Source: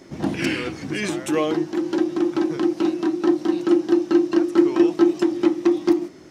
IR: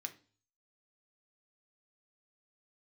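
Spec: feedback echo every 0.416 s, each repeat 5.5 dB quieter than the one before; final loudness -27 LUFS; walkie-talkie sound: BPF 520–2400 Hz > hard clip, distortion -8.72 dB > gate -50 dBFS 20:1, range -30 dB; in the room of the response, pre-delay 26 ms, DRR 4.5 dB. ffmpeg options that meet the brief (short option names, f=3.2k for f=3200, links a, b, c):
-filter_complex "[0:a]aecho=1:1:416|832|1248|1664|2080|2496|2912:0.531|0.281|0.149|0.079|0.0419|0.0222|0.0118,asplit=2[a][b];[1:a]atrim=start_sample=2205,adelay=26[c];[b][c]afir=irnorm=-1:irlink=0,volume=-2dB[d];[a][d]amix=inputs=2:normalize=0,highpass=520,lowpass=2.4k,asoftclip=type=hard:threshold=-23.5dB,agate=range=-30dB:threshold=-50dB:ratio=20,volume=1.5dB"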